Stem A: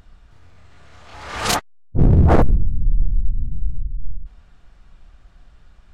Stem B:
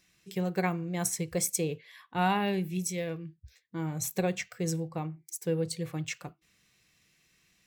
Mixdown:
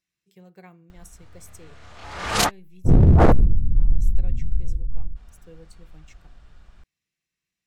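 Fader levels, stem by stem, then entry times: -0.5 dB, -18.0 dB; 0.90 s, 0.00 s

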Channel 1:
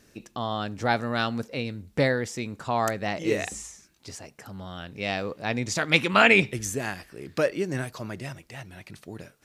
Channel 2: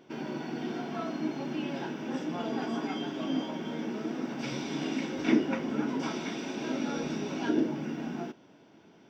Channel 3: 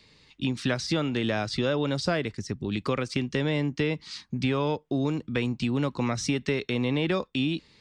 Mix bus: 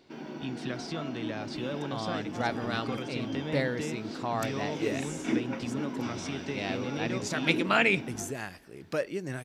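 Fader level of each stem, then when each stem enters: -6.5 dB, -4.5 dB, -10.0 dB; 1.55 s, 0.00 s, 0.00 s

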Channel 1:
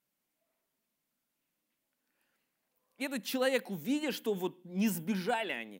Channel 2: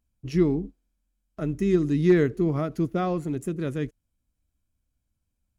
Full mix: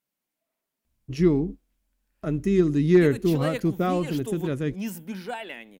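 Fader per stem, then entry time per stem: -1.5 dB, +1.5 dB; 0.00 s, 0.85 s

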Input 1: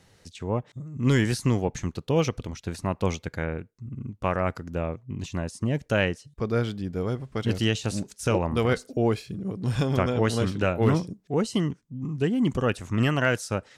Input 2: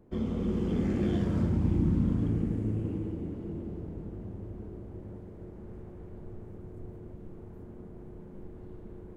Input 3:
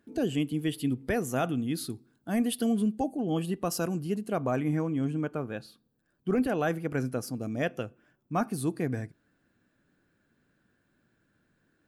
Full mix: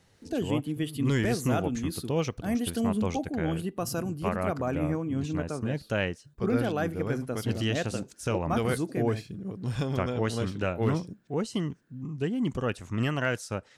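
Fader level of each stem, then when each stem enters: -5.0 dB, mute, -1.5 dB; 0.00 s, mute, 0.15 s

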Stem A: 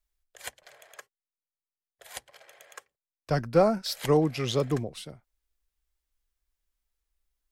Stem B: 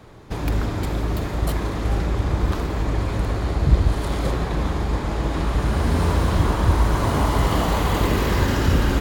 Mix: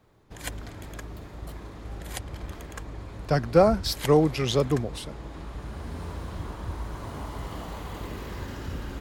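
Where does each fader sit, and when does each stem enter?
+3.0 dB, -16.5 dB; 0.00 s, 0.00 s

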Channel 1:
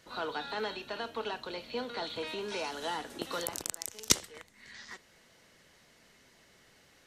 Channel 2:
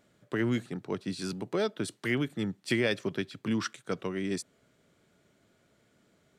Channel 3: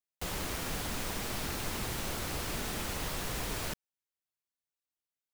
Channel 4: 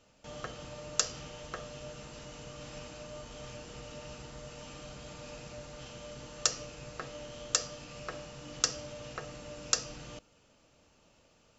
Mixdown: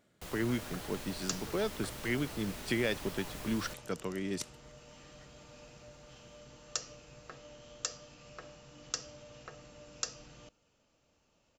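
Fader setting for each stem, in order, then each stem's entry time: -18.0 dB, -4.0 dB, -9.0 dB, -8.0 dB; 0.30 s, 0.00 s, 0.00 s, 0.30 s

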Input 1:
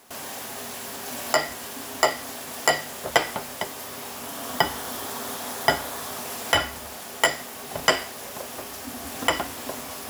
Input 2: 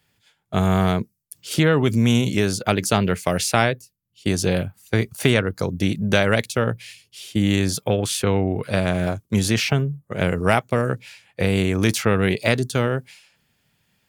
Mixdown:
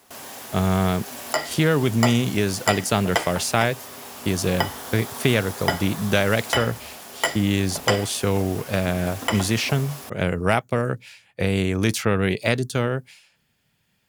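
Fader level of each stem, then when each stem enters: -2.5 dB, -2.0 dB; 0.00 s, 0.00 s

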